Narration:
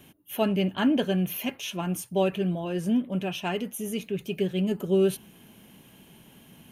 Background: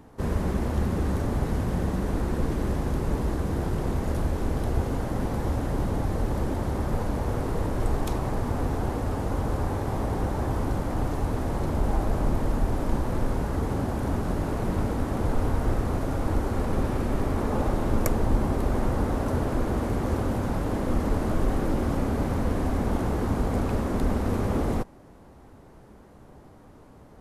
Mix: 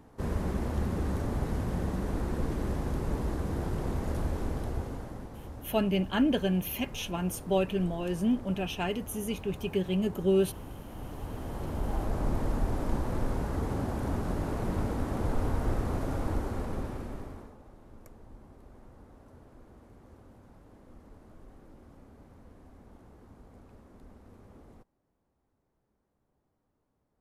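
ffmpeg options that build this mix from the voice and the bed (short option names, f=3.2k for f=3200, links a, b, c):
-filter_complex "[0:a]adelay=5350,volume=-2.5dB[a];[1:a]volume=7dB,afade=t=out:st=4.36:d=0.94:silence=0.266073,afade=t=in:st=10.9:d=1.49:silence=0.251189,afade=t=out:st=16.16:d=1.4:silence=0.0668344[b];[a][b]amix=inputs=2:normalize=0"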